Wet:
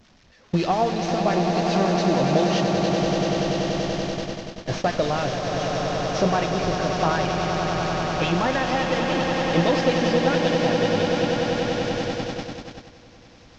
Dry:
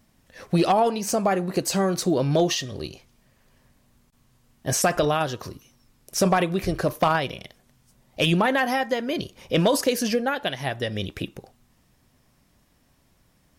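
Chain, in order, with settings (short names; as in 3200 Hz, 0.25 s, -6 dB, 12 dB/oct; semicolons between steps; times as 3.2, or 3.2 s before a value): delta modulation 32 kbps, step -29 dBFS; harmonic tremolo 7.2 Hz, depth 50%, crossover 1200 Hz; on a send: swelling echo 96 ms, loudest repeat 8, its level -8.5 dB; on the sum: gate -26 dBFS, range -18 dB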